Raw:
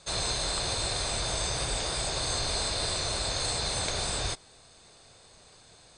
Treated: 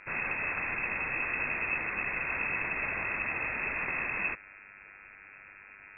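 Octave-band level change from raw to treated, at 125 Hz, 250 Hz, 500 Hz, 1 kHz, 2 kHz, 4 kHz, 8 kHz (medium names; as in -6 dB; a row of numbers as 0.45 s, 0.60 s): -12.0 dB, -3.5 dB, -8.0 dB, -2.5 dB, +9.0 dB, under -35 dB, under -40 dB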